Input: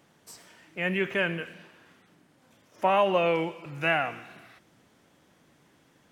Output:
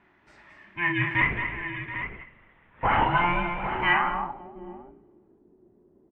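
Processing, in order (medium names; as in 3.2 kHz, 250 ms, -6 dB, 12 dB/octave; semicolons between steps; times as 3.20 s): every band turned upside down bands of 500 Hz; 1.21–3.06 s: LPC vocoder at 8 kHz whisper; multi-tap echo 40/219/292/537/729/802 ms -7/-7.5/-15/-18/-13/-9.5 dB; low-pass sweep 2 kHz -> 430 Hz, 3.92–4.66 s; trim -2 dB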